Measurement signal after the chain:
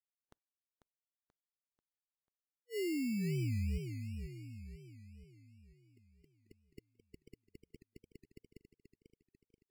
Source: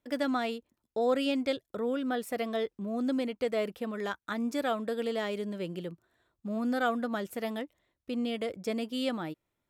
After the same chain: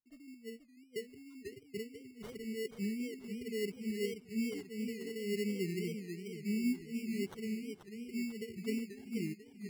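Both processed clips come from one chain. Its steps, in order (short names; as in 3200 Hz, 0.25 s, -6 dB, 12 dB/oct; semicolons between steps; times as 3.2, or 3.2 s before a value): brick-wall FIR band-stop 440–12000 Hz; sample-and-hold 18×; spectral noise reduction 22 dB; warbling echo 0.488 s, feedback 49%, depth 175 cents, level -7.5 dB; gain +1 dB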